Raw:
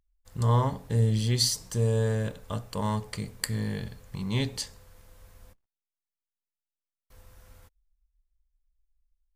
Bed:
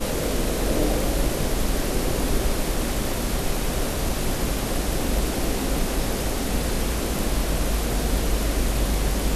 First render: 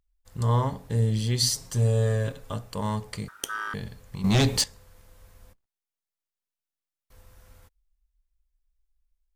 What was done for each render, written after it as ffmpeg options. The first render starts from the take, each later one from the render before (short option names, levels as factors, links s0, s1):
-filter_complex "[0:a]asettb=1/sr,asplit=3[s0][s1][s2];[s0]atrim=end=1.424[s3];[s1]atrim=start=1.42:end=2.53,asetpts=PTS-STARTPTS,afade=t=in:d=0.004:c=qsin,afade=t=out:st=1.106:d=0.004:c=qsin,aecho=1:1:7.4:0.72,atrim=end_sample=48951[s4];[s2]atrim=start=2.526[s5];[s3][s4]acrossfade=d=0.004:c1=hsin:c2=qsin[s6];[s6][s5]acrossfade=d=0.004:c1=qsin:c2=hsin,asettb=1/sr,asplit=3[s7][s8][s9];[s7]atrim=end=3.284[s10];[s8]atrim=start=3.28:end=3.74,asetpts=PTS-STARTPTS,afade=t=in:d=0.004:c=qsin,afade=t=out:st=0.456:d=0.004:c=qsin,aeval=exprs='val(0)*sin(2*PI*1400*n/s)':c=same[s11];[s9]atrim=start=3.736[s12];[s10][s11]acrossfade=d=0.004:c1=hsin:c2=qsin[s13];[s13][s12]acrossfade=d=0.004:c1=qsin:c2=hsin,asettb=1/sr,asplit=3[s14][s15][s16];[s14]atrim=end=4.244[s17];[s15]atrim=start=4.24:end=4.64,asetpts=PTS-STARTPTS,afade=t=in:d=0.004:c=qsin,afade=t=out:st=0.396:d=0.004:c=qsin,aeval=exprs='0.158*sin(PI/2*2.51*val(0)/0.158)':c=same[s18];[s16]atrim=start=4.636[s19];[s17][s18]acrossfade=d=0.004:c1=hsin:c2=qsin[s20];[s20][s19]acrossfade=d=0.004:c1=qsin:c2=hsin"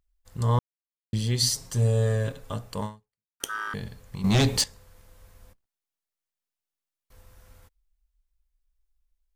-filter_complex "[0:a]asplit=4[s0][s1][s2][s3];[s0]atrim=end=0.59,asetpts=PTS-STARTPTS,afade=t=out:st=0.586:d=0.004:c=hsin[s4];[s1]atrim=start=0.59:end=1.13,asetpts=PTS-STARTPTS,volume=0[s5];[s2]atrim=start=1.13:end=3.4,asetpts=PTS-STARTPTS,afade=t=in:d=0.004:c=hsin,afade=t=out:st=1.7:d=0.57:c=exp[s6];[s3]atrim=start=3.4,asetpts=PTS-STARTPTS,afade=t=in:d=0.004:c=hsin[s7];[s4][s5][s6][s7]concat=n=4:v=0:a=1"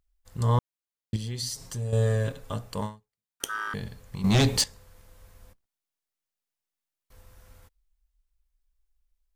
-filter_complex "[0:a]asettb=1/sr,asplit=3[s0][s1][s2];[s0]atrim=end=1.164[s3];[s1]atrim=start=1.16:end=1.93,asetpts=PTS-STARTPTS,afade=t=in:d=0.004:c=qsin,afade=t=out:st=0.766:d=0.004:c=qsin,acompressor=threshold=0.0158:ratio=2:attack=3.2:release=140:knee=1:detection=peak[s4];[s2]atrim=start=1.926[s5];[s3][s4]acrossfade=d=0.004:c1=hsin:c2=qsin[s6];[s6][s5]acrossfade=d=0.004:c1=qsin:c2=hsin"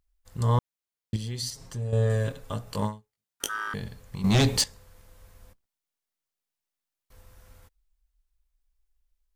-filter_complex "[0:a]asettb=1/sr,asplit=3[s0][s1][s2];[s0]atrim=end=1.504[s3];[s1]atrim=start=1.5:end=2.1,asetpts=PTS-STARTPTS,afade=t=in:d=0.004:c=qsin,afade=t=out:st=0.596:d=0.004:c=qsin,highshelf=f=4600:g=-9.5[s4];[s2]atrim=start=2.096[s5];[s3][s4]acrossfade=d=0.004:c1=hsin:c2=qsin[s6];[s6][s5]acrossfade=d=0.004:c1=qsin:c2=hsin,asettb=1/sr,asplit=3[s7][s8][s9];[s7]atrim=end=2.654[s10];[s8]atrim=start=2.65:end=3.49,asetpts=PTS-STARTPTS,afade=t=in:d=0.004:c=qsin,afade=t=out:st=0.836:d=0.004:c=qsin,asplit=2[s11][s12];[s12]adelay=19,volume=0.75[s13];[s11][s13]amix=inputs=2:normalize=0,atrim=end_sample=37044[s14];[s9]atrim=start=3.486[s15];[s10][s14]acrossfade=d=0.004:c1=hsin:c2=qsin[s16];[s16][s15]acrossfade=d=0.004:c1=qsin:c2=hsin"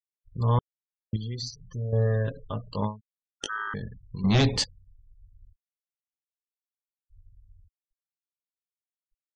-af "lowpass=5500,afftfilt=real='re*gte(hypot(re,im),0.0126)':imag='im*gte(hypot(re,im),0.0126)':win_size=1024:overlap=0.75"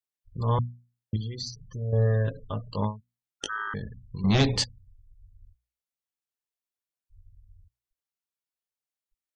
-af "equalizer=f=100:w=2.4:g=2.5,bandreject=f=60:t=h:w=6,bandreject=f=120:t=h:w=6,bandreject=f=180:t=h:w=6,bandreject=f=240:t=h:w=6"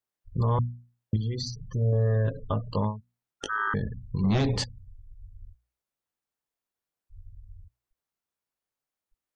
-filter_complex "[0:a]acrossover=split=1700[s0][s1];[s0]acontrast=86[s2];[s2][s1]amix=inputs=2:normalize=0,alimiter=limit=0.141:level=0:latency=1:release=236"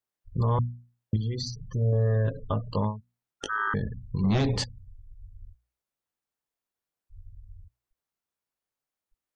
-af anull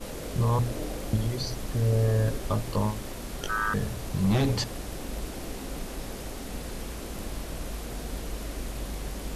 -filter_complex "[1:a]volume=0.251[s0];[0:a][s0]amix=inputs=2:normalize=0"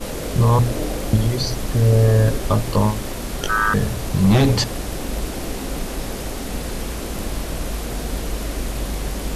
-af "volume=2.99"